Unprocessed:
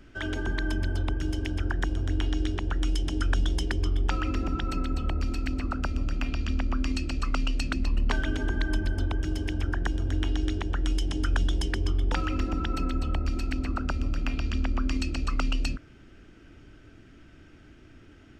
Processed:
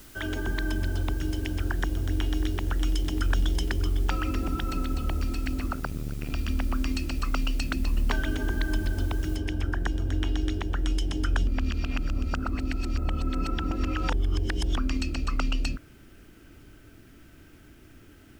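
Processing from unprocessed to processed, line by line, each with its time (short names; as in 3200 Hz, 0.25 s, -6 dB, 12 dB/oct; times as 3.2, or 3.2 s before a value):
1.76–3.82 echo 0.593 s -16.5 dB
5.73–6.3 core saturation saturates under 210 Hz
9.36 noise floor step -52 dB -66 dB
11.47–14.77 reverse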